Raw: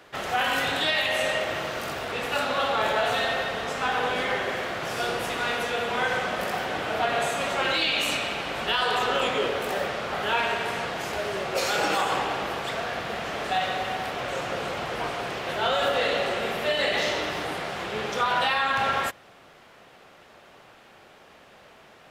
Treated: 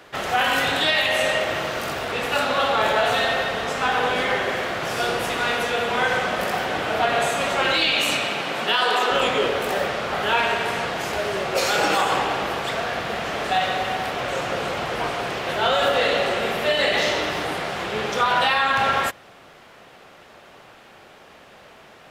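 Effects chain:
0:07.96–0:09.10: high-pass filter 67 Hz → 250 Hz 24 dB per octave
level +4.5 dB

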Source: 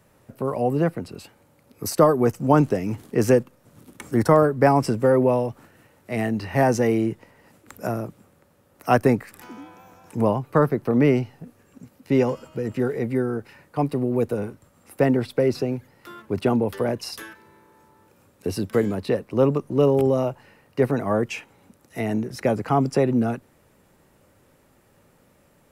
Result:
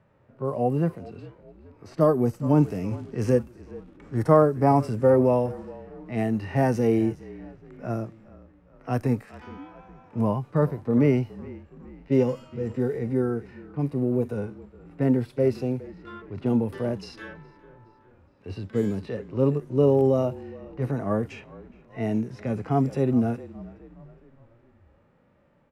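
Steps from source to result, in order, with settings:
echo with shifted repeats 416 ms, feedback 52%, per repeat −39 Hz, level −19.5 dB
harmonic and percussive parts rebalanced percussive −16 dB
low-pass that shuts in the quiet parts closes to 2,200 Hz, open at −21 dBFS

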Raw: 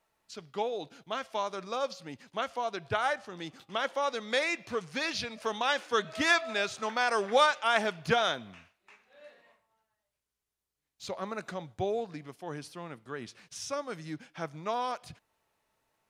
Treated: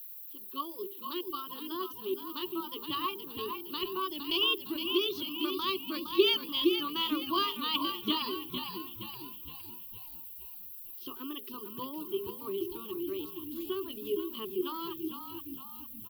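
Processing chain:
formant filter u
automatic gain control gain up to 14 dB
reverb reduction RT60 0.9 s
mains-hum notches 60/120/180/240/300/360/420/480/540 Hz
on a send: echo with shifted repeats 463 ms, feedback 48%, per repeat −36 Hz, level −7 dB
on the sum: background noise blue −60 dBFS
pitch shifter +5 semitones
drawn EQ curve 100 Hz 0 dB, 150 Hz −9 dB, 350 Hz −1 dB, 530 Hz −23 dB, 1,000 Hz −10 dB, 1,600 Hz −23 dB, 2,300 Hz −4 dB, 4,100 Hz −3 dB, 8,000 Hz −21 dB, 12,000 Hz +12 dB
level +7 dB

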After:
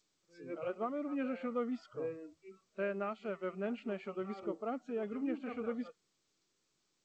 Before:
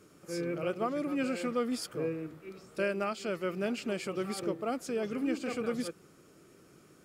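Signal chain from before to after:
mains-hum notches 50/100/150 Hz
noise reduction from a noise print of the clip's start 24 dB
low-pass filter 1,900 Hz 12 dB per octave
level −4.5 dB
G.722 64 kbit/s 16,000 Hz

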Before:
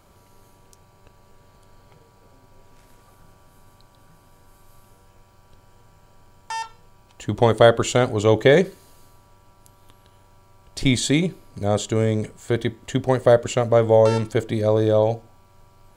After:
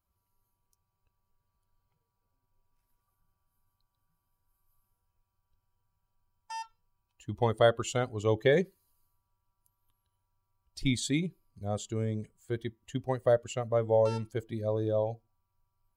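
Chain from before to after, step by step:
spectral dynamics exaggerated over time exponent 1.5
level −8.5 dB

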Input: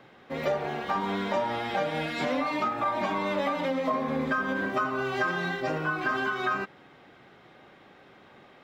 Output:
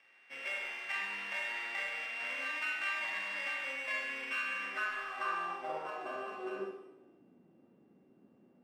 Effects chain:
samples sorted by size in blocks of 16 samples
band-pass filter sweep 2,100 Hz → 240 Hz, 0:04.48–0:07.40
in parallel at −11.5 dB: soft clipping −30.5 dBFS, distortion −14 dB
on the sum: four-comb reverb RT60 0.84 s, combs from 33 ms, DRR 0 dB
level −6 dB

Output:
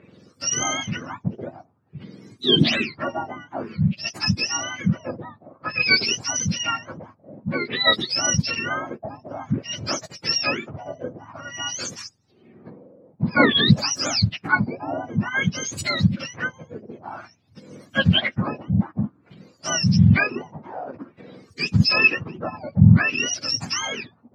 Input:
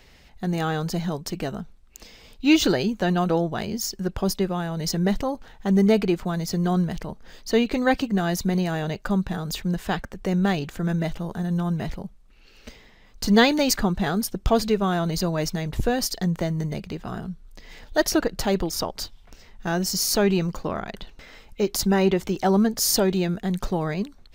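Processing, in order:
frequency axis turned over on the octave scale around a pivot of 1,000 Hz
auto-filter low-pass sine 0.52 Hz 590–7,200 Hz
level +1.5 dB

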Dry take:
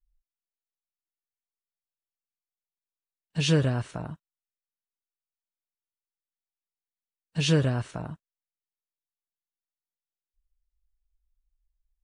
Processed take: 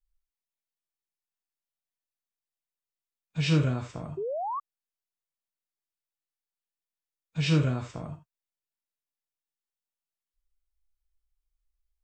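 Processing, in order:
reverb whose tail is shaped and stops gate 100 ms flat, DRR 4.5 dB
formants moved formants −3 semitones
sound drawn into the spectrogram rise, 0:04.17–0:04.60, 370–1,200 Hz −28 dBFS
level −3.5 dB

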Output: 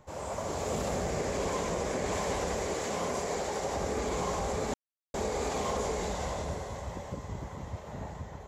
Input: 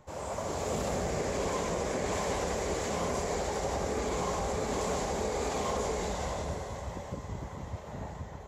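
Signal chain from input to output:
0:02.66–0:03.76: low-shelf EQ 88 Hz −12 dB
0:04.74–0:05.14: silence

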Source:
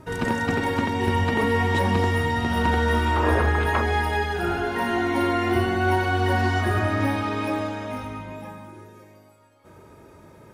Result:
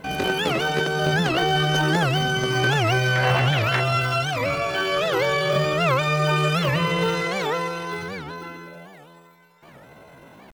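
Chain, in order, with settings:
in parallel at −12 dB: soft clipping −24 dBFS, distortion −9 dB
on the sum: pitch shifter +8.5 semitones
wow of a warped record 78 rpm, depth 250 cents

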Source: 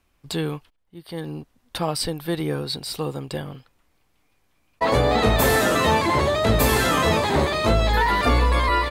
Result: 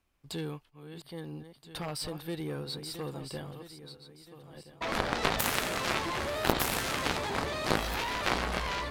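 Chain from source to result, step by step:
feedback delay that plays each chunk backwards 662 ms, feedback 56%, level −11.5 dB
harmonic generator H 3 −7 dB, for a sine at −5.5 dBFS

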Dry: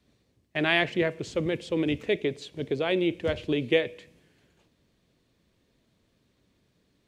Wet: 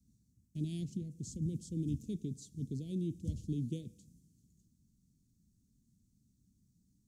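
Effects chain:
0:00.83–0:01.42: downward compressor 2.5 to 1, threshold −30 dBFS, peak gain reduction 6.5 dB
Chebyshev band-stop filter 220–6,400 Hz, order 3

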